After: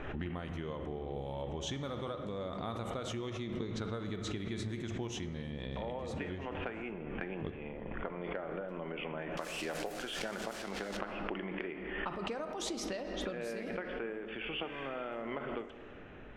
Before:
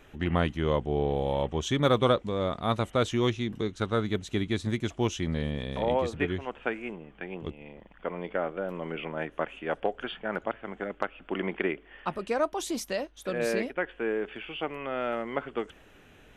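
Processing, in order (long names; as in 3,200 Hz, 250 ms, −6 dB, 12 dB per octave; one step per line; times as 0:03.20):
0:09.37–0:10.97: spike at every zero crossing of −27.5 dBFS
low-pass that shuts in the quiet parts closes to 1,900 Hz, open at −23.5 dBFS
0:14.66–0:15.03: healed spectral selection 1,500–9,400 Hz after
downward compressor 16 to 1, threshold −40 dBFS, peak gain reduction 22.5 dB
on a send at −8 dB: convolution reverb RT60 2.6 s, pre-delay 6 ms
on the sum: background raised ahead of every attack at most 29 dB per second
level +3 dB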